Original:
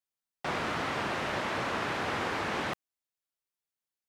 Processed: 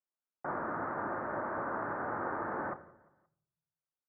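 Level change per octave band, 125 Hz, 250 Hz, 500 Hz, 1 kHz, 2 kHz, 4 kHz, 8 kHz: −7.5 dB, −3.5 dB, −3.0 dB, −2.5 dB, −7.0 dB, below −40 dB, below −30 dB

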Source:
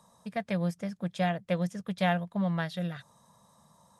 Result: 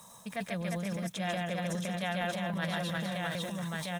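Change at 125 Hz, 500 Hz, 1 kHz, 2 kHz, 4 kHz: −3.0, −2.0, −2.0, +2.0, +4.5 decibels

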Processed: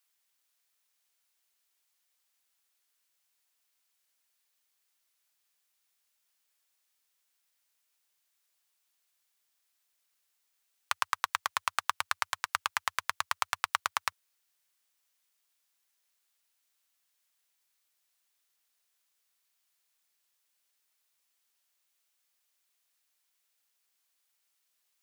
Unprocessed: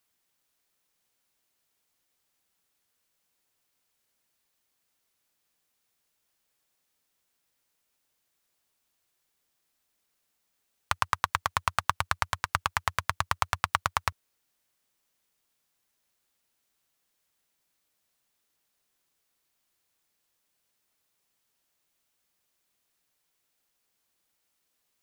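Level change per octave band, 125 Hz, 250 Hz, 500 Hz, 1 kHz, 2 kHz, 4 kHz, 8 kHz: −22.5 dB, below −15 dB, −8.0 dB, −4.0 dB, −2.0 dB, −0.5 dB, 0.0 dB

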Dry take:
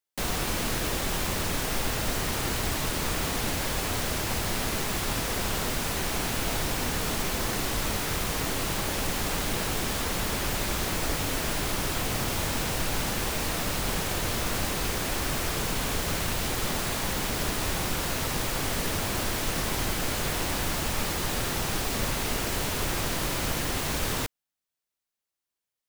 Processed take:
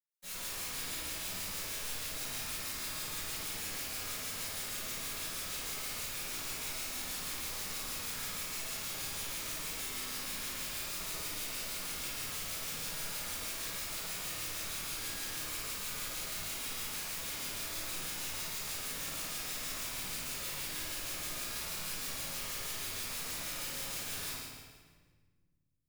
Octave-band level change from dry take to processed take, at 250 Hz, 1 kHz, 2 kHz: −18.5, −15.0, −10.5 decibels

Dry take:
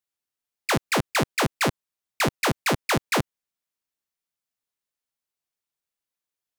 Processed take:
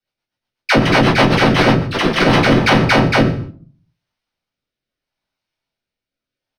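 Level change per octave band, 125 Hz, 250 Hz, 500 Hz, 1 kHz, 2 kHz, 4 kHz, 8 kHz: +15.0, +15.5, +13.0, +11.0, +11.5, +10.5, −0.5 decibels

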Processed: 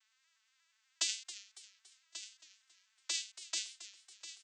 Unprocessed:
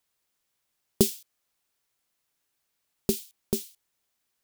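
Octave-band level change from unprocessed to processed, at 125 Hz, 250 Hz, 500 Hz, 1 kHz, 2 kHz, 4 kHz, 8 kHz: below −40 dB, −37.0 dB, −32.5 dB, −9.0 dB, +6.0 dB, +1.5 dB, −3.0 dB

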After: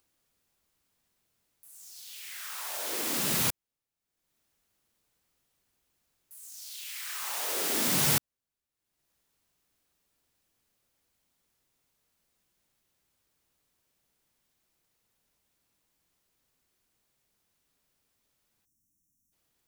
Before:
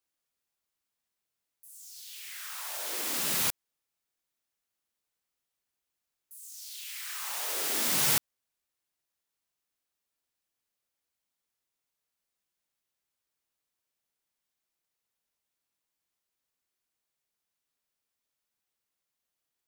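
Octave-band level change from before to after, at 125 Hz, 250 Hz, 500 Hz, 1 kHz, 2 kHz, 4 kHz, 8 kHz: +8.0, +7.0, +4.0, +1.5, +0.5, +0.5, +0.5 decibels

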